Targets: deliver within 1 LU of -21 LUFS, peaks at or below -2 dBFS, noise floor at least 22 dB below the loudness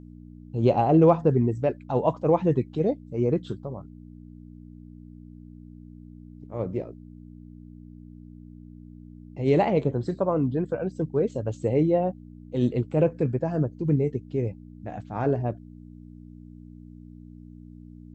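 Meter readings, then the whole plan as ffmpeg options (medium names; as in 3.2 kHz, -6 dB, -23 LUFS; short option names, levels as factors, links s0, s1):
hum 60 Hz; highest harmonic 300 Hz; hum level -43 dBFS; loudness -25.0 LUFS; peak level -6.5 dBFS; loudness target -21.0 LUFS
-> -af "bandreject=f=60:t=h:w=4,bandreject=f=120:t=h:w=4,bandreject=f=180:t=h:w=4,bandreject=f=240:t=h:w=4,bandreject=f=300:t=h:w=4"
-af "volume=1.58"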